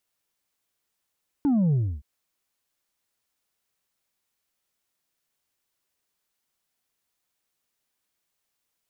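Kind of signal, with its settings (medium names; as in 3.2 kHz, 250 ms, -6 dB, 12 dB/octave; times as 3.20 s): sub drop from 300 Hz, over 0.57 s, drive 3 dB, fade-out 0.29 s, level -19 dB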